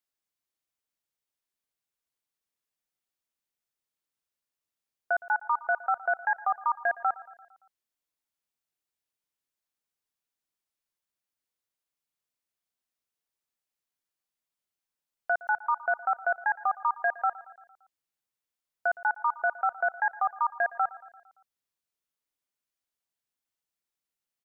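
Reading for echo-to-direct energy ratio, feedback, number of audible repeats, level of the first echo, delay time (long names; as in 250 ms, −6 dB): −17.0 dB, 58%, 4, −19.0 dB, 114 ms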